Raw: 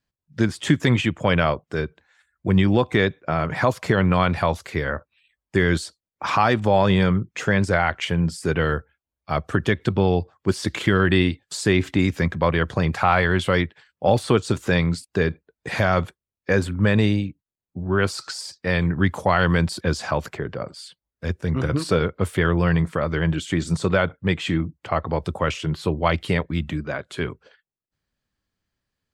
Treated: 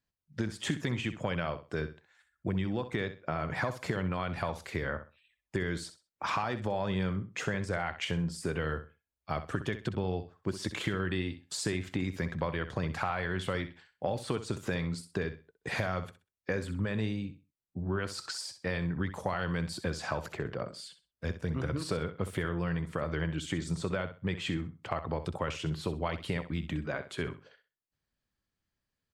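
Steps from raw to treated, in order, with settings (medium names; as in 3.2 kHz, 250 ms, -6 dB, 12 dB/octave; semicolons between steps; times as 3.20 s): compression, threshold -23 dBFS, peak gain reduction 11 dB; feedback delay 64 ms, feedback 23%, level -12 dB; trim -6 dB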